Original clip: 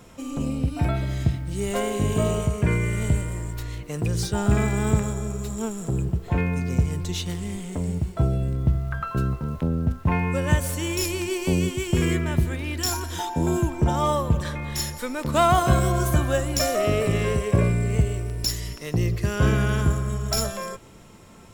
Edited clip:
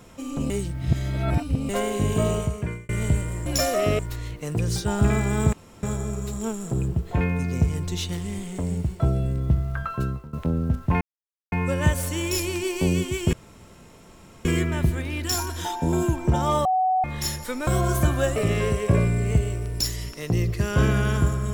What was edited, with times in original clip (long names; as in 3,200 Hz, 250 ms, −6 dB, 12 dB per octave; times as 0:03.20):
0:00.50–0:01.69: reverse
0:02.35–0:02.89: fade out
0:05.00: splice in room tone 0.30 s
0:08.95–0:09.50: fade out equal-power, to −19 dB
0:10.18: splice in silence 0.51 s
0:11.99: splice in room tone 1.12 s
0:14.19–0:14.58: beep over 747 Hz −18 dBFS
0:15.21–0:15.78: remove
0:16.47–0:17.00: move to 0:03.46